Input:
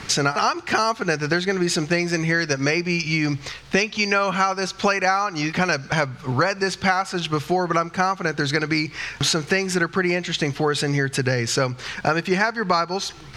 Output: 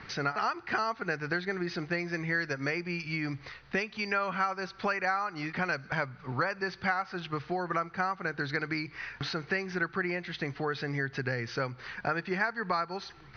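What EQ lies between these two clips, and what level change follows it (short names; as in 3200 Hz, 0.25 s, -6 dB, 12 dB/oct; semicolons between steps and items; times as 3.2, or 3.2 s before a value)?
rippled Chebyshev low-pass 6200 Hz, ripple 6 dB; air absorption 210 m; -6.0 dB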